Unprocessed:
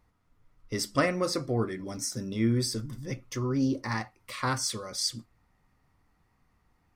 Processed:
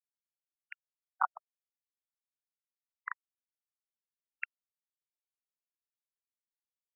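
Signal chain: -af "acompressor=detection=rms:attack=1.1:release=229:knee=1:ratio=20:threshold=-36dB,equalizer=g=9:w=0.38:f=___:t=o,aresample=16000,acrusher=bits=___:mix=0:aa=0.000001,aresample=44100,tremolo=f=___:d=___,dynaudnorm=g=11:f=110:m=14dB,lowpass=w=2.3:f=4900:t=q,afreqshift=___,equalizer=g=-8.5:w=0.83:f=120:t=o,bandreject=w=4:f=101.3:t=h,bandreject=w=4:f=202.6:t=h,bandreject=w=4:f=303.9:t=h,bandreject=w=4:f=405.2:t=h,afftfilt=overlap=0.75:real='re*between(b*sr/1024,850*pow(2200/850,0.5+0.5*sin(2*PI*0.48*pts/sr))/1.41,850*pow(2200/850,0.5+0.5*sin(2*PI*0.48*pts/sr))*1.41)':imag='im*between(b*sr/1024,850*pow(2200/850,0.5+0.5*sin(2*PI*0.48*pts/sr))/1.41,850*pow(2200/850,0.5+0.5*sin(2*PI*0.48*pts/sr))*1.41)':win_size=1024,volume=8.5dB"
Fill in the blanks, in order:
520, 4, 0.93, 0.98, 33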